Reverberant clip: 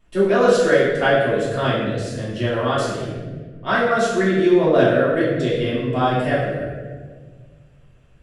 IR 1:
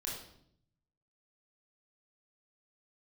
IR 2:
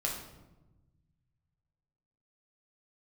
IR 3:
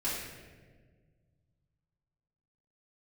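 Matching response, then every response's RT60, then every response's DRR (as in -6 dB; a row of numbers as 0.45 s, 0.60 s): 3; 0.70 s, 1.1 s, 1.6 s; -4.0 dB, -2.0 dB, -10.5 dB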